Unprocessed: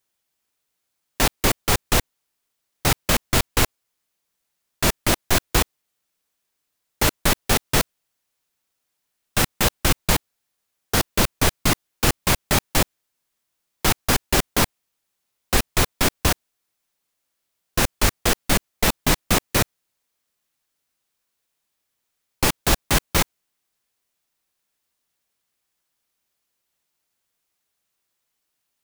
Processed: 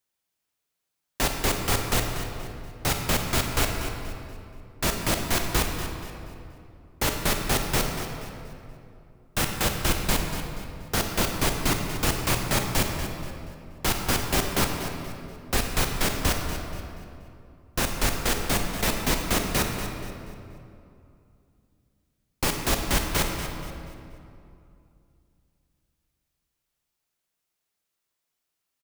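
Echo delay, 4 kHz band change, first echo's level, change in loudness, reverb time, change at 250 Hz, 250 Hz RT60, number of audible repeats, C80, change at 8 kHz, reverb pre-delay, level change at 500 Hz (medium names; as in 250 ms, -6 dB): 239 ms, -4.5 dB, -12.0 dB, -5.0 dB, 2.7 s, -3.5 dB, 3.1 s, 2, 4.0 dB, -4.5 dB, 24 ms, -3.5 dB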